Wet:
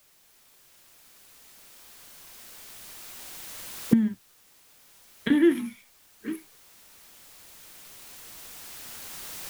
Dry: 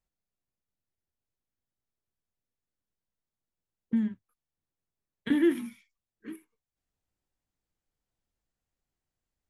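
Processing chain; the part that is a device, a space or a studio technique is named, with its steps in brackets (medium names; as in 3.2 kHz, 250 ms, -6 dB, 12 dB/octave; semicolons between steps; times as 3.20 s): cheap recorder with automatic gain (white noise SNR 28 dB; recorder AGC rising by 5.7 dB/s); trim +4 dB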